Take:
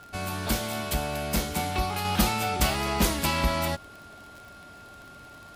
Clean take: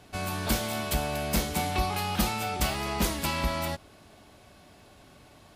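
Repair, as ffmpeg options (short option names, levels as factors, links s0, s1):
-af "adeclick=t=4,bandreject=f=1400:w=30,asetnsamples=n=441:p=0,asendcmd='2.05 volume volume -3.5dB',volume=1"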